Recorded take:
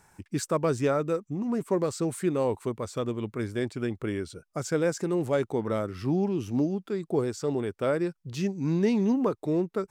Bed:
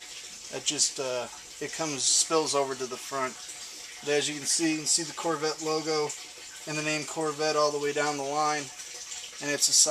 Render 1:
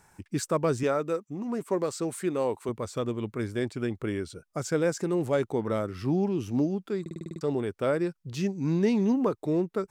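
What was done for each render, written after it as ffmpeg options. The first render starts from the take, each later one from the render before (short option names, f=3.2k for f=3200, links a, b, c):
-filter_complex "[0:a]asettb=1/sr,asplit=3[a][b][c];[a]atrim=end=0.834[d];[b]atrim=start=0.83:end=2.69,asetpts=PTS-STARTPTS,afade=t=in:d=0.004:c=qsin,afade=t=out:st=1.856:d=0.004:c=qsin,highpass=f=260:p=1[e];[c]atrim=start=2.686[f];[d][e]acrossfade=d=0.004:c1=hsin:c2=qsin[g];[g][f]acrossfade=d=0.004:c1=qsin:c2=hsin,asplit=9[h][i][j][k][l][m][n][o][p];[h]atrim=end=7.062[q];[i]atrim=start=7.008:end=7.062[r];[j]atrim=start=7.008:end=7.062[s];[k]atrim=start=7.008:end=7.062[t];[l]atrim=start=7.008:end=7.062[u];[m]atrim=start=7.008:end=7.062[v];[n]atrim=start=7.008:end=7.062[w];[o]atrim=start=7.008:end=7.062[x];[p]atrim=start=7.408[y];[q][r]acrossfade=d=0.004:c1=hsin:c2=hsin[z];[z][s]acrossfade=d=0.004:c1=hsin:c2=hsin[aa];[aa][t]acrossfade=d=0.004:c1=hsin:c2=hsin[ab];[ab][u]acrossfade=d=0.004:c1=hsin:c2=hsin[ac];[ac][v]acrossfade=d=0.004:c1=hsin:c2=hsin[ad];[ad][w]acrossfade=d=0.004:c1=hsin:c2=hsin[ae];[ae][x]acrossfade=d=0.004:c1=hsin:c2=hsin[af];[af][y]acrossfade=d=0.004:c1=hsin:c2=hsin"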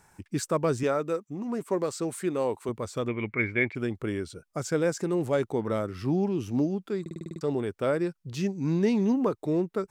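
-filter_complex "[0:a]asettb=1/sr,asplit=3[a][b][c];[a]atrim=end=3.084[d];[b]atrim=start=3.08:end=3.75,asetpts=PTS-STARTPTS,afade=t=in:d=0.004:c=qsin,afade=t=out:st=0.666:d=0.004:c=qsin,lowpass=f=2.2k:t=q:w=13[e];[c]atrim=start=3.746[f];[d][e]acrossfade=d=0.004:c1=hsin:c2=qsin[g];[g][f]acrossfade=d=0.004:c1=qsin:c2=hsin"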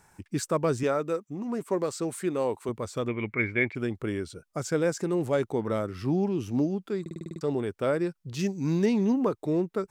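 -filter_complex "[0:a]asettb=1/sr,asplit=3[a][b][c];[a]atrim=end=8.394[d];[b]atrim=start=8.39:end=8.86,asetpts=PTS-STARTPTS,afade=t=in:d=0.004:c=qsin,afade=t=out:st=0.466:d=0.004:c=qsin,highshelf=f=4k:g=8[e];[c]atrim=start=8.856[f];[d][e]acrossfade=d=0.004:c1=hsin:c2=qsin[g];[g][f]acrossfade=d=0.004:c1=qsin:c2=hsin"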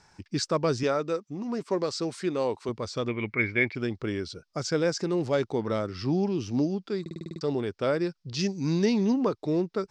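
-af "lowpass=f=5k:t=q:w=3.4"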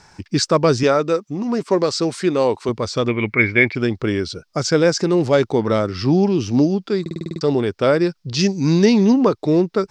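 -af "volume=10.5dB,alimiter=limit=-1dB:level=0:latency=1"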